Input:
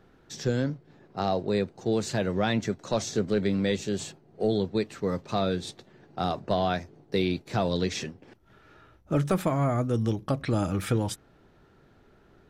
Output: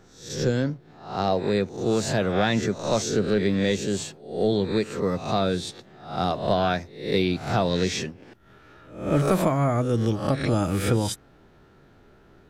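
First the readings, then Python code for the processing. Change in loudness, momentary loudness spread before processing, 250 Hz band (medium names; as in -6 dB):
+3.5 dB, 8 LU, +3.5 dB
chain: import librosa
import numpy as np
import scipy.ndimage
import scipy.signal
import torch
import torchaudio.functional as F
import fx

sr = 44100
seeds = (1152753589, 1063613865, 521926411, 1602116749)

y = fx.spec_swells(x, sr, rise_s=0.52)
y = y * 10.0 ** (2.5 / 20.0)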